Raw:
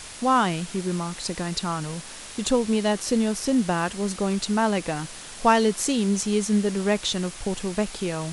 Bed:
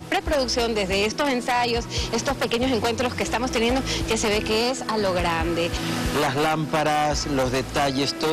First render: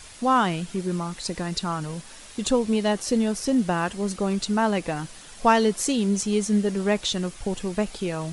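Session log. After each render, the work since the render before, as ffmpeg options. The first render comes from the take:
-af "afftdn=nr=7:nf=-40"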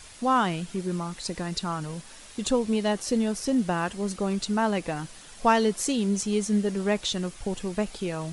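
-af "volume=-2.5dB"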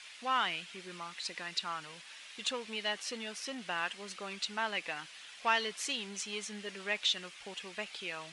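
-filter_complex "[0:a]asplit=2[a][b];[b]asoftclip=type=hard:threshold=-23dB,volume=-6.5dB[c];[a][c]amix=inputs=2:normalize=0,bandpass=f=2.6k:t=q:w=1.5:csg=0"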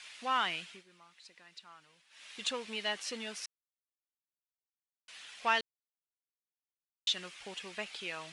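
-filter_complex "[0:a]asplit=7[a][b][c][d][e][f][g];[a]atrim=end=0.84,asetpts=PTS-STARTPTS,afade=t=out:st=0.57:d=0.27:c=qsin:silence=0.149624[h];[b]atrim=start=0.84:end=2.1,asetpts=PTS-STARTPTS,volume=-16.5dB[i];[c]atrim=start=2.1:end=3.46,asetpts=PTS-STARTPTS,afade=t=in:d=0.27:c=qsin:silence=0.149624,afade=t=out:st=1.356:d=0.004:c=hsin[j];[d]atrim=start=3.46:end=5.08,asetpts=PTS-STARTPTS,volume=0[k];[e]atrim=start=5.08:end=5.61,asetpts=PTS-STARTPTS,afade=t=in:d=0.004:c=hsin,afade=t=out:st=0.526:d=0.004:c=hsin[l];[f]atrim=start=5.61:end=7.07,asetpts=PTS-STARTPTS,volume=0[m];[g]atrim=start=7.07,asetpts=PTS-STARTPTS,afade=t=in:d=0.004:c=hsin[n];[h][i][j][k][l][m][n]concat=n=7:v=0:a=1"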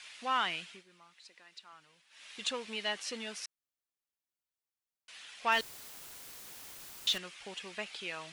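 -filter_complex "[0:a]asettb=1/sr,asplit=3[a][b][c];[a]atrim=end=1.144[d];[b]atrim=start=1.14:end=1.73,asetpts=PTS-STARTPTS,afade=t=in:d=0.004:c=qsin,afade=t=out:st=0.586:d=0.004:c=qsin,highpass=240[e];[c]atrim=start=1.726[f];[d][e]acrossfade=d=0.004:c1=hsin:c2=qsin[g];[g][f]acrossfade=d=0.004:c1=qsin:c2=hsin,asettb=1/sr,asplit=3[h][i][j];[h]atrim=end=5.524[k];[i]atrim=start=5.52:end=7.18,asetpts=PTS-STARTPTS,afade=t=in:d=0.004:c=qsin,afade=t=out:st=1.656:d=0.004:c=qsin,aeval=exprs='val(0)+0.5*0.0133*sgn(val(0))':c=same[l];[j]atrim=start=7.176[m];[k][l]acrossfade=d=0.004:c1=hsin:c2=qsin[n];[n][m]acrossfade=d=0.004:c1=qsin:c2=hsin"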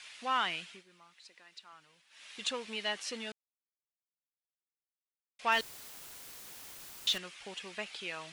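-filter_complex "[0:a]asplit=3[a][b][c];[a]atrim=end=3.32,asetpts=PTS-STARTPTS,afade=t=out:st=3.316:d=0.004:c=hsin[d];[b]atrim=start=3.32:end=5.39,asetpts=PTS-STARTPTS,volume=0[e];[c]atrim=start=5.39,asetpts=PTS-STARTPTS,afade=t=in:d=0.004:c=hsin[f];[d][e][f]concat=n=3:v=0:a=1"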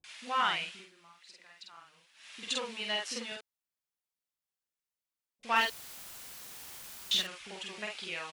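-filter_complex "[0:a]asplit=2[a][b];[b]adelay=48,volume=-2.5dB[c];[a][c]amix=inputs=2:normalize=0,acrossover=split=370[d][e];[e]adelay=40[f];[d][f]amix=inputs=2:normalize=0"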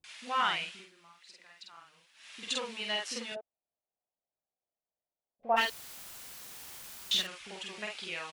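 -filter_complex "[0:a]asplit=3[a][b][c];[a]afade=t=out:st=3.34:d=0.02[d];[b]lowpass=f=680:t=q:w=3.9,afade=t=in:st=3.34:d=0.02,afade=t=out:st=5.56:d=0.02[e];[c]afade=t=in:st=5.56:d=0.02[f];[d][e][f]amix=inputs=3:normalize=0"

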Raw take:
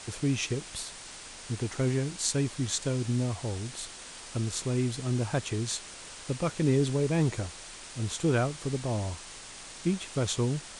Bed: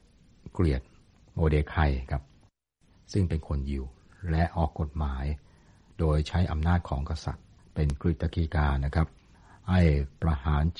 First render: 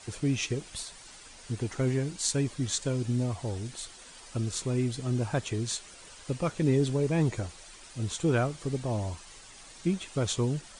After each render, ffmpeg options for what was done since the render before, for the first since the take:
-af "afftdn=nr=9:nf=-46"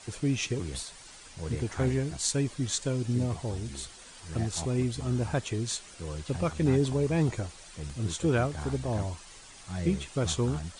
-filter_complex "[1:a]volume=-12.5dB[a];[0:a][a]amix=inputs=2:normalize=0"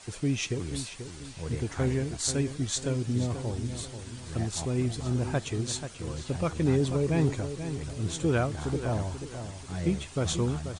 -filter_complex "[0:a]asplit=2[a][b];[b]adelay=486,lowpass=f=3.4k:p=1,volume=-9.5dB,asplit=2[c][d];[d]adelay=486,lowpass=f=3.4k:p=1,volume=0.38,asplit=2[e][f];[f]adelay=486,lowpass=f=3.4k:p=1,volume=0.38,asplit=2[g][h];[h]adelay=486,lowpass=f=3.4k:p=1,volume=0.38[i];[a][c][e][g][i]amix=inputs=5:normalize=0"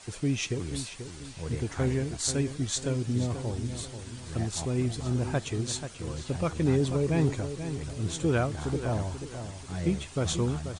-af anull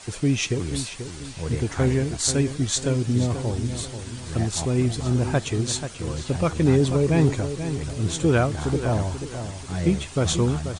-af "volume=6.5dB"

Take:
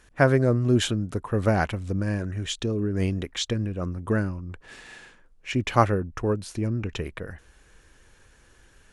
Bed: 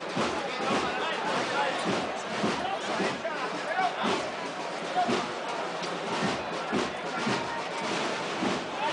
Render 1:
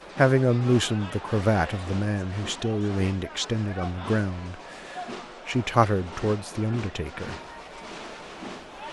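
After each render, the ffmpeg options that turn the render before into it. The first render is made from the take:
-filter_complex "[1:a]volume=-9dB[a];[0:a][a]amix=inputs=2:normalize=0"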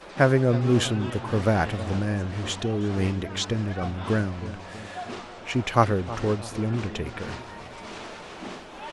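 -filter_complex "[0:a]asplit=2[a][b];[b]adelay=319,lowpass=f=870:p=1,volume=-13.5dB,asplit=2[c][d];[d]adelay=319,lowpass=f=870:p=1,volume=0.53,asplit=2[e][f];[f]adelay=319,lowpass=f=870:p=1,volume=0.53,asplit=2[g][h];[h]adelay=319,lowpass=f=870:p=1,volume=0.53,asplit=2[i][j];[j]adelay=319,lowpass=f=870:p=1,volume=0.53[k];[a][c][e][g][i][k]amix=inputs=6:normalize=0"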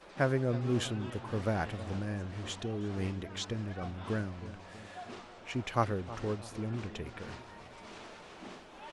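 -af "volume=-10dB"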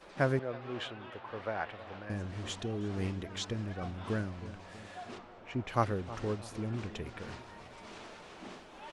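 -filter_complex "[0:a]asettb=1/sr,asplit=3[a][b][c];[a]atrim=end=0.394[d];[b]atrim=start=0.39:end=2.1,asetpts=PTS-STARTPTS,afade=t=in:d=0.004:c=qsin,afade=t=out:st=1.706:d=0.004:c=qsin,acrossover=split=460 3900:gain=0.178 1 0.0708[e][f][g];[e][f][g]amix=inputs=3:normalize=0[h];[c]atrim=start=2.096[i];[d][h]acrossfade=d=0.004:c1=hsin:c2=qsin[j];[j][i]acrossfade=d=0.004:c1=qsin:c2=hsin,asplit=3[k][l][m];[k]afade=t=out:st=5.17:d=0.02[n];[l]lowpass=f=1.6k:p=1,afade=t=in:st=5.17:d=0.02,afade=t=out:st=5.68:d=0.02[o];[m]afade=t=in:st=5.68:d=0.02[p];[n][o][p]amix=inputs=3:normalize=0"

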